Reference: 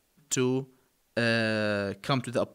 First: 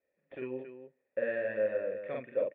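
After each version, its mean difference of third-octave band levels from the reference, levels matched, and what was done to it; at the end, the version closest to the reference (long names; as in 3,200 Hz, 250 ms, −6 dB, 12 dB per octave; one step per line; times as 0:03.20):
12.0 dB: high-pass filter 280 Hz 6 dB per octave
in parallel at −11.5 dB: sample-and-hold swept by an LFO 10×, swing 60% 3.8 Hz
on the sum: formant resonators in series e
loudspeakers that aren't time-aligned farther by 16 metres −1 dB, 94 metres −8 dB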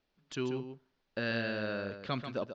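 5.5 dB: inverse Chebyshev low-pass filter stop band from 9,000 Hz, stop band 40 dB
parametric band 100 Hz −2.5 dB
on a send: single-tap delay 139 ms −8.5 dB
on the sum: level −8 dB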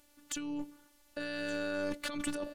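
8.0 dB: compressor whose output falls as the input rises −34 dBFS, ratio −1
hard clipping −25.5 dBFS, distortion −18 dB
phases set to zero 292 Hz
single-tap delay 1,171 ms −18.5 dB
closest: second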